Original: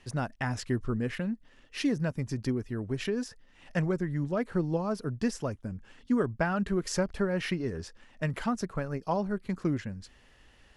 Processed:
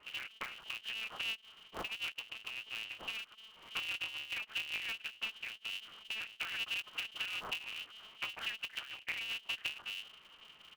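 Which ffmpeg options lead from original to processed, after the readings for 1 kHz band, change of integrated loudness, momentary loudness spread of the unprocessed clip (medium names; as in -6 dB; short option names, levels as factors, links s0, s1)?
-12.5 dB, -8.0 dB, 8 LU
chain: -af "lowpass=f=2600:t=q:w=0.5098,lowpass=f=2600:t=q:w=0.6013,lowpass=f=2600:t=q:w=0.9,lowpass=f=2600:t=q:w=2.563,afreqshift=-3000,acompressor=threshold=0.0141:ratio=10,aecho=1:1:6.8:0.88,aeval=exprs='val(0)*sgn(sin(2*PI*110*n/s))':c=same,volume=0.708"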